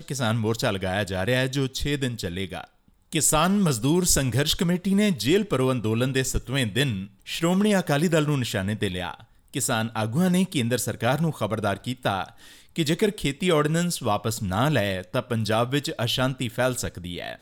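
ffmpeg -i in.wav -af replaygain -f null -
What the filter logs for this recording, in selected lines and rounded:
track_gain = +5.2 dB
track_peak = 0.302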